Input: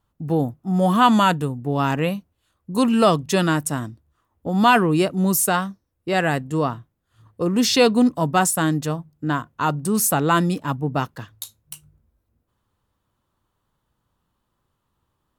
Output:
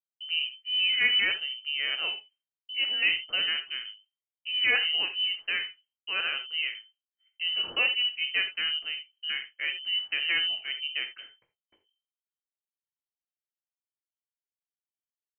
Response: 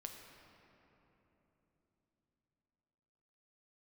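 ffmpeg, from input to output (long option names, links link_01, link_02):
-filter_complex "[0:a]lowpass=frequency=2700:width_type=q:width=0.5098,lowpass=frequency=2700:width_type=q:width=0.6013,lowpass=frequency=2700:width_type=q:width=0.9,lowpass=frequency=2700:width_type=q:width=2.563,afreqshift=-3200,agate=range=-33dB:threshold=-44dB:ratio=3:detection=peak[link_01];[1:a]atrim=start_sample=2205,atrim=end_sample=3087,asetrate=34839,aresample=44100[link_02];[link_01][link_02]afir=irnorm=-1:irlink=0,volume=-5.5dB"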